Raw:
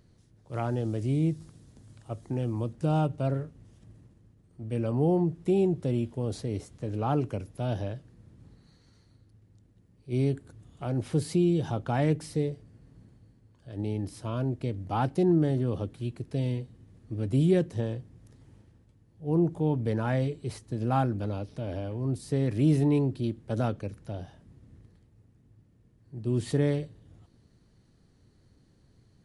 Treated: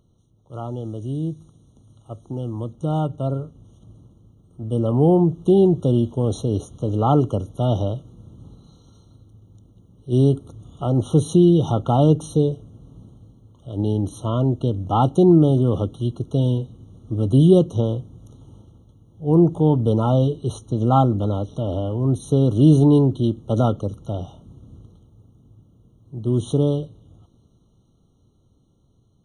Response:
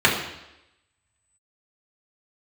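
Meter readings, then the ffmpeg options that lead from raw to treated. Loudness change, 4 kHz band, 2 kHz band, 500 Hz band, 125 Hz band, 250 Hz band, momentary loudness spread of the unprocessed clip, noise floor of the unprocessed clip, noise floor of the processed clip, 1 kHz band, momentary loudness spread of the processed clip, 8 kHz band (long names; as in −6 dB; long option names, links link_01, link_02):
+9.5 dB, +8.5 dB, below −10 dB, +9.5 dB, +9.5 dB, +9.5 dB, 13 LU, −63 dBFS, −60 dBFS, +9.5 dB, 15 LU, can't be measured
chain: -af "dynaudnorm=framelen=730:gausssize=11:maxgain=11.5dB,afftfilt=real='re*eq(mod(floor(b*sr/1024/1400),2),0)':imag='im*eq(mod(floor(b*sr/1024/1400),2),0)':win_size=1024:overlap=0.75"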